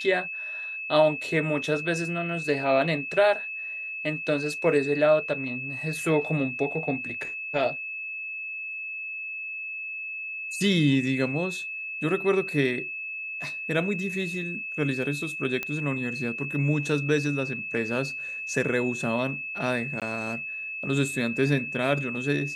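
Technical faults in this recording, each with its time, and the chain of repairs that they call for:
whine 2.6 kHz -32 dBFS
15.63 s: pop -15 dBFS
20.00–20.02 s: dropout 17 ms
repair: de-click; band-stop 2.6 kHz, Q 30; interpolate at 20.00 s, 17 ms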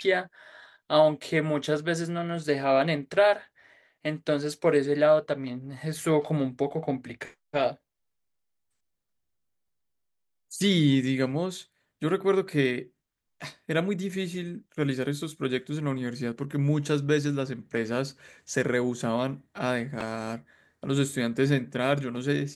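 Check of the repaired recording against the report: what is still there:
15.63 s: pop

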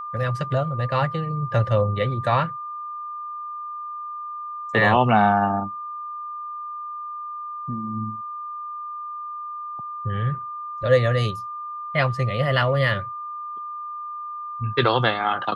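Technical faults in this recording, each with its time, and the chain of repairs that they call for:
whine 1.2 kHz -30 dBFS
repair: band-stop 1.2 kHz, Q 30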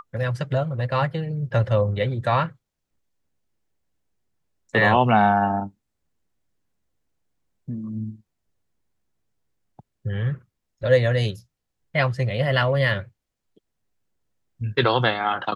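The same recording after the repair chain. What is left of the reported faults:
nothing left

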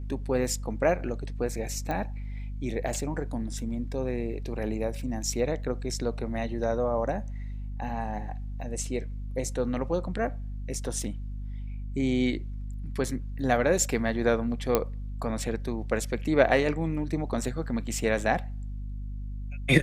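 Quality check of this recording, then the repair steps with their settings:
hum 50 Hz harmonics 5 -35 dBFS
1.91 s: pop -19 dBFS
14.75 s: pop -8 dBFS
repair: de-click; de-hum 50 Hz, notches 5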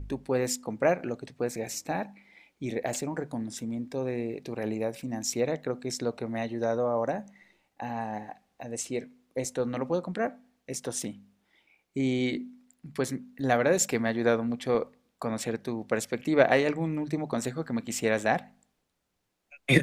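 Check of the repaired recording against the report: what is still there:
nothing left

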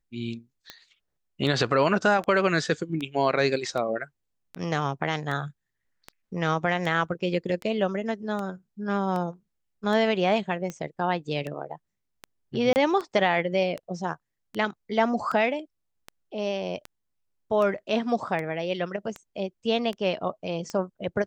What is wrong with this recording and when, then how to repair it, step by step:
tick 78 rpm -20 dBFS
12.73–12.76 s: dropout 29 ms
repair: de-click; interpolate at 12.73 s, 29 ms

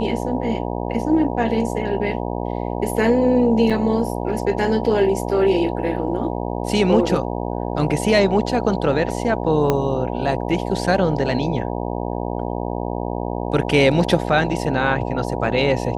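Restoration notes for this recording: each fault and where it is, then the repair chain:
buzz 60 Hz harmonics 16 -25 dBFS
3.70–3.71 s: dropout 6 ms
9.70 s: pop -5 dBFS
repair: de-click; de-hum 60 Hz, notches 16; interpolate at 3.70 s, 6 ms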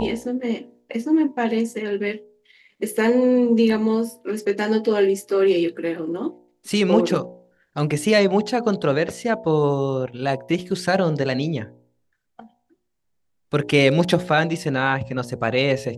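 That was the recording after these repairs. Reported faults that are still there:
9.70 s: pop

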